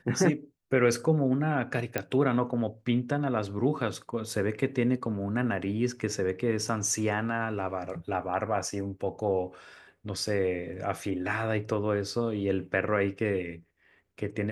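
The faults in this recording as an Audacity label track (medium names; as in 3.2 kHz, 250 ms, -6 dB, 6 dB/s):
1.980000	1.980000	pop -13 dBFS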